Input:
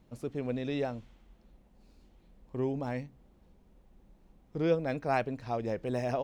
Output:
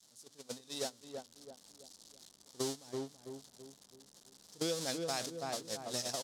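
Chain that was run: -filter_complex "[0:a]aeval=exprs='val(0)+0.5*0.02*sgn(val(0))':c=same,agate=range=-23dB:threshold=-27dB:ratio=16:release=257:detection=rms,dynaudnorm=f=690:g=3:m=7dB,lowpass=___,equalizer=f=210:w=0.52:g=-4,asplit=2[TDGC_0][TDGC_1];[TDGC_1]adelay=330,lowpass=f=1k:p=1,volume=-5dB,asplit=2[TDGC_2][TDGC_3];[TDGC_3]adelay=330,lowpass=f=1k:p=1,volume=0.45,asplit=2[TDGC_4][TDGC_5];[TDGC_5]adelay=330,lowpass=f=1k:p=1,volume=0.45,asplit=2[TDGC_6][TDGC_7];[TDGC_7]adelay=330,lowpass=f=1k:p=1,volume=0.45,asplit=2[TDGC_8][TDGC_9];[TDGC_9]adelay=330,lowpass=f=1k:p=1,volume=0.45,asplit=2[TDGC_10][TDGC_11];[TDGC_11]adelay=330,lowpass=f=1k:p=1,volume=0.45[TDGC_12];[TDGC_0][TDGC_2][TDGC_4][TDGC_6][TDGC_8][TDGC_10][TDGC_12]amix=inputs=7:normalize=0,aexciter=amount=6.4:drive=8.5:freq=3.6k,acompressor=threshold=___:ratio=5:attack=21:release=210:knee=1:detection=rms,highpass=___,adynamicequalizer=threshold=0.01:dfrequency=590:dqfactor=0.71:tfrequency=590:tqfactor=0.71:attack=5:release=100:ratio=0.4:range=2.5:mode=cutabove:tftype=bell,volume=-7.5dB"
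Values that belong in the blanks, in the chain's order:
7.5k, -25dB, 160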